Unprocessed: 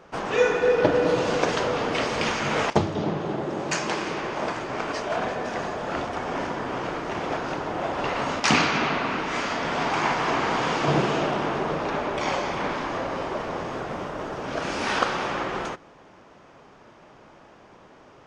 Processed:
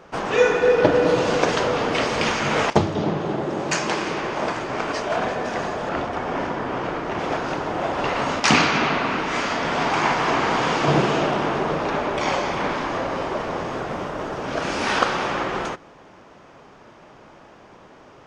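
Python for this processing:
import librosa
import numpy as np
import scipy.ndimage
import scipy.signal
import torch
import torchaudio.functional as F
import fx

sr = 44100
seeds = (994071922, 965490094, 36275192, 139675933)

y = fx.high_shelf(x, sr, hz=5000.0, db=-9.0, at=(5.89, 7.19))
y = F.gain(torch.from_numpy(y), 3.5).numpy()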